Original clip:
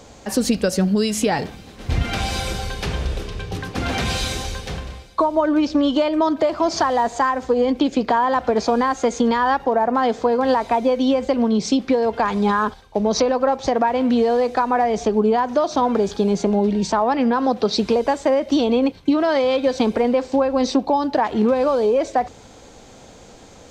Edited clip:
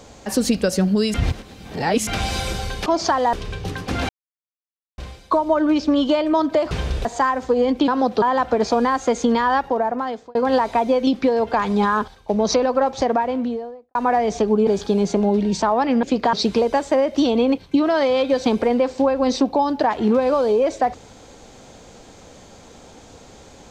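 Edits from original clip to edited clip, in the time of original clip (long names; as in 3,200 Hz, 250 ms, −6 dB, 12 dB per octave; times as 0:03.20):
0:01.14–0:02.07: reverse
0:02.86–0:03.20: swap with 0:06.58–0:07.05
0:03.96–0:04.85: silence
0:07.88–0:08.18: swap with 0:17.33–0:17.67
0:09.33–0:10.31: fade out equal-power
0:11.03–0:11.73: remove
0:13.63–0:14.61: fade out and dull
0:15.33–0:15.97: remove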